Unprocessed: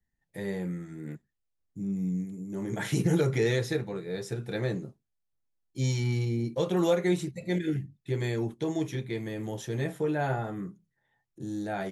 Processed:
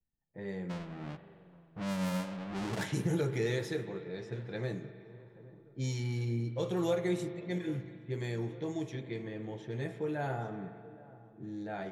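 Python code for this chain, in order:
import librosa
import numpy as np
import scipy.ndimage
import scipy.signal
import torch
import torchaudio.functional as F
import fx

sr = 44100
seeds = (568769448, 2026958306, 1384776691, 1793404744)

p1 = fx.halfwave_hold(x, sr, at=(0.69, 2.84), fade=0.02)
p2 = p1 + fx.echo_feedback(p1, sr, ms=822, feedback_pct=59, wet_db=-20, dry=0)
p3 = fx.env_lowpass(p2, sr, base_hz=900.0, full_db=-24.5)
p4 = fx.rev_spring(p3, sr, rt60_s=2.3, pass_ms=(42,), chirp_ms=35, drr_db=10.0)
y = p4 * 10.0 ** (-6.5 / 20.0)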